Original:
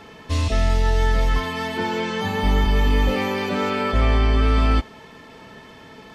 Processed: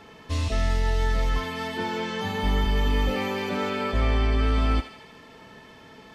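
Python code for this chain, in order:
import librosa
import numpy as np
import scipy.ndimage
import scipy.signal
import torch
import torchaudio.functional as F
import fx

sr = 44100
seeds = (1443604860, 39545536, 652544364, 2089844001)

y = fx.echo_thinned(x, sr, ms=77, feedback_pct=65, hz=1100.0, wet_db=-8.5)
y = F.gain(torch.from_numpy(y), -5.0).numpy()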